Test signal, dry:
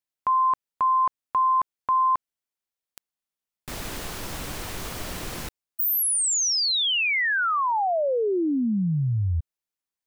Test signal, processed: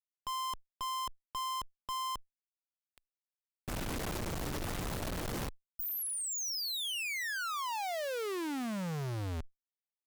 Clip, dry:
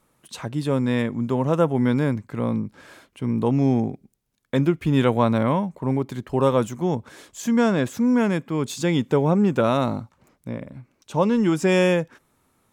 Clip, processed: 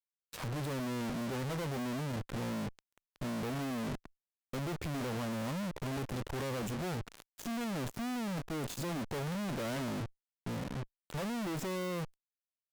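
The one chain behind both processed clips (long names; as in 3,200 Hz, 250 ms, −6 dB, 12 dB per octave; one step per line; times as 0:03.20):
tilt shelving filter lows +7.5 dB, about 1,100 Hz
fuzz pedal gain 36 dB, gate −36 dBFS
tube saturation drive 36 dB, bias 0.65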